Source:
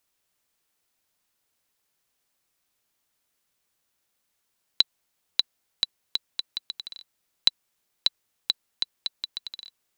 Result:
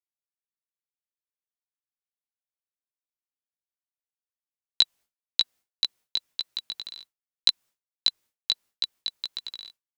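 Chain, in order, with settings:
chorus effect 1.7 Hz, delay 16 ms, depth 2.7 ms
downward expander −48 dBFS
level +4 dB

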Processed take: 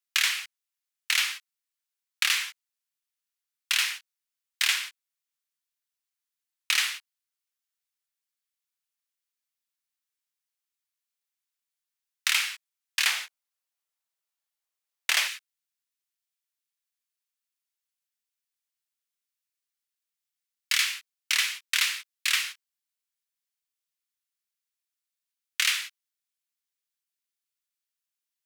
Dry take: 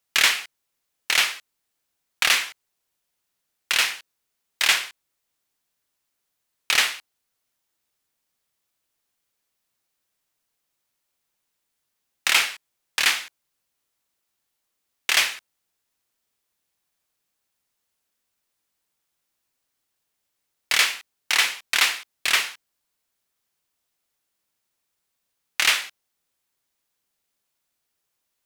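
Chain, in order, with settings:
noise gate −32 dBFS, range −10 dB
Bessel high-pass filter 1,500 Hz, order 8, from 0:13.04 660 Hz, from 0:15.27 1,800 Hz
downward compressor, threshold −20 dBFS, peak gain reduction 7 dB

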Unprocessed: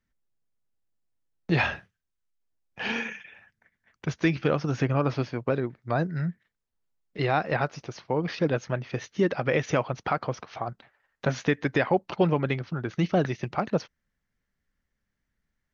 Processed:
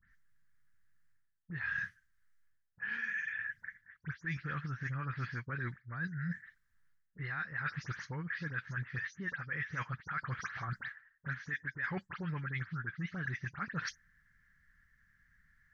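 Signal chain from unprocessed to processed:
every frequency bin delayed by itself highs late, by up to 111 ms
drawn EQ curve 160 Hz 0 dB, 290 Hz −13 dB, 720 Hz −19 dB, 1,700 Hz +13 dB, 2,600 Hz −7 dB
reversed playback
downward compressor 12 to 1, threshold −45 dBFS, peak gain reduction 29.5 dB
reversed playback
level +9 dB

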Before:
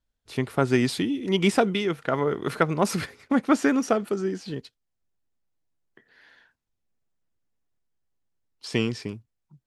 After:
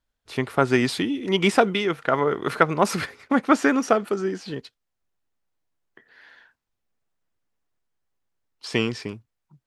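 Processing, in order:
drawn EQ curve 170 Hz 0 dB, 1,200 Hz +7 dB, 10,000 Hz +1 dB
level −1 dB

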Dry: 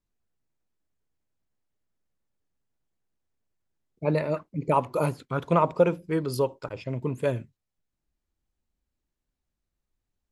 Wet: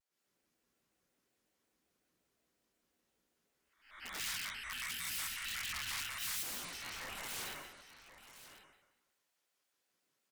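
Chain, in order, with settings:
peak hold with a rise ahead of every peak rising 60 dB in 0.55 s
downward compressor 3 to 1, threshold −27 dBFS, peak gain reduction 10.5 dB
gate on every frequency bin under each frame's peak −25 dB weak
parametric band 880 Hz −5.5 dB 0.59 octaves
mains-hum notches 50/100/150 Hz
dense smooth reverb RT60 1.1 s, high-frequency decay 0.8×, pre-delay 105 ms, DRR −8.5 dB
wrap-around overflow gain 35.5 dB
0:04.19–0:06.43: drawn EQ curve 150 Hz 0 dB, 450 Hz −18 dB, 1,700 Hz +4 dB
single-tap delay 1,047 ms −13.5 dB
pitch modulation by a square or saw wave square 5.5 Hz, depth 250 cents
level −1.5 dB

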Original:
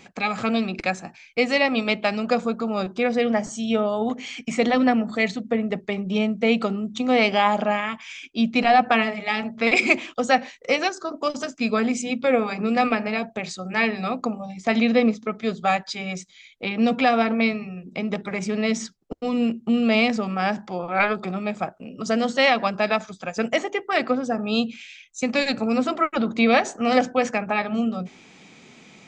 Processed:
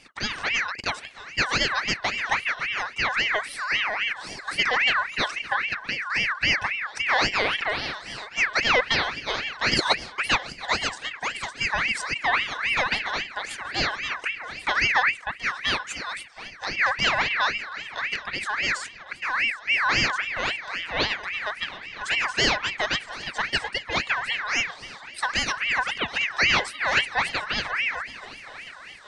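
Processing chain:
parametric band 1,100 Hz −9.5 dB 0.52 octaves
feedback echo with a long and a short gap by turns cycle 969 ms, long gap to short 3 to 1, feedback 45%, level −17 dB
ring modulator whose carrier an LFO sweeps 1,900 Hz, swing 35%, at 3.7 Hz

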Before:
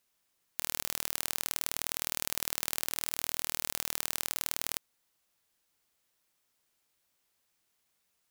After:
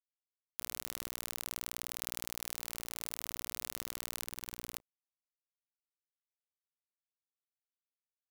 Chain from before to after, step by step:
mains-hum notches 60/120/180/240/300/360/420 Hz
0:04.22–0:04.73: compressor whose output falls as the input rises −40 dBFS, ratio −0.5
bit reduction 9 bits
level −6.5 dB

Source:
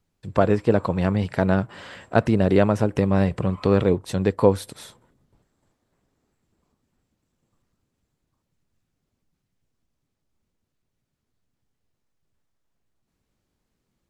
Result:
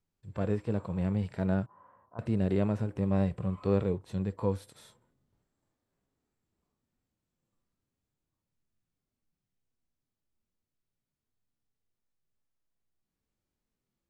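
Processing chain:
harmonic and percussive parts rebalanced percussive −14 dB
0:01.66–0:02.19: transistor ladder low-pass 1,100 Hz, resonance 80%
level −7 dB

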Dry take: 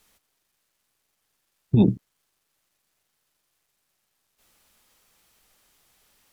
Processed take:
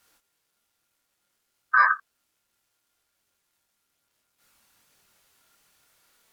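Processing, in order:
ring modulation 1,400 Hz
multi-voice chorus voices 2, 0.6 Hz, delay 25 ms, depth 3.2 ms
level +5 dB

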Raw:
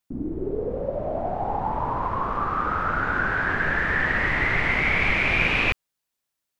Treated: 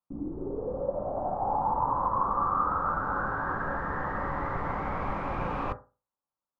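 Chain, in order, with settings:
high shelf with overshoot 1,600 Hz −13 dB, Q 3
on a send: convolution reverb RT60 0.30 s, pre-delay 3 ms, DRR 6 dB
on the sum: level −7.5 dB

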